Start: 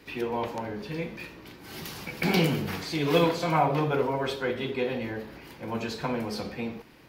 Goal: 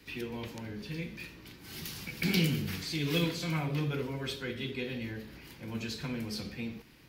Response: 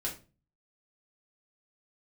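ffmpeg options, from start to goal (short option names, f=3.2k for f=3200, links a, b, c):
-filter_complex "[0:a]equalizer=f=680:t=o:w=2.6:g=-10,acrossover=split=530|1300[a][b][c];[b]acompressor=threshold=-59dB:ratio=6[d];[a][d][c]amix=inputs=3:normalize=0"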